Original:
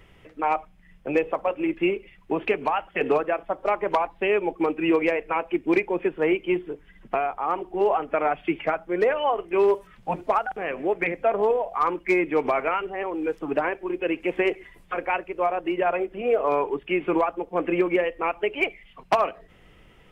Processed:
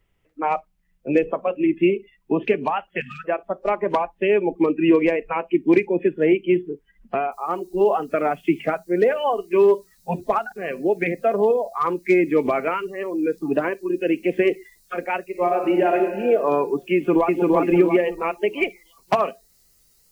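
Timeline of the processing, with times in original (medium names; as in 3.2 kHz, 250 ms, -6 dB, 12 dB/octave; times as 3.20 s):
3.00–3.24 s: spectral selection erased 240–1200 Hz
7.32 s: noise floor step -68 dB -59 dB
15.28–15.98 s: reverb throw, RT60 2.2 s, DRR 2 dB
16.94–17.44 s: echo throw 340 ms, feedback 45%, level -1 dB
whole clip: dynamic bell 220 Hz, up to +8 dB, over -37 dBFS, Q 0.7; spectral noise reduction 18 dB; bass shelf 70 Hz +7 dB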